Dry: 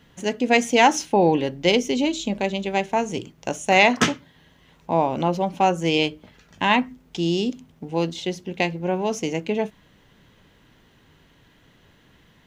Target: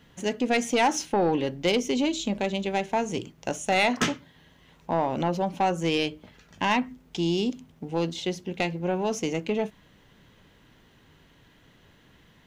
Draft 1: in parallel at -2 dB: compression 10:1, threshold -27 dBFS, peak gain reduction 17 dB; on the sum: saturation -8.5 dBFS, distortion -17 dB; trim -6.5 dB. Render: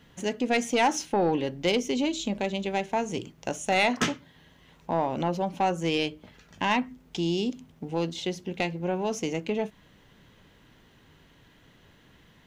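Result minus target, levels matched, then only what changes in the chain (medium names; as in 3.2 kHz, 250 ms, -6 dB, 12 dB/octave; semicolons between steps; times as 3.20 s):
compression: peak gain reduction +7 dB
change: compression 10:1, threshold -19 dBFS, peak gain reduction 9.5 dB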